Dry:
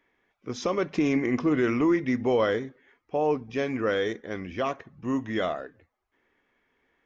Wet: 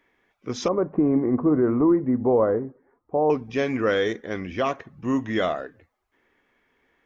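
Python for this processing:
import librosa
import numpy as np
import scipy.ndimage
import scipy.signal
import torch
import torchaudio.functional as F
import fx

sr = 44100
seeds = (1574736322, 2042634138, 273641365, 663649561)

y = fx.lowpass(x, sr, hz=1100.0, slope=24, at=(0.68, 3.3))
y = y * librosa.db_to_amplitude(4.0)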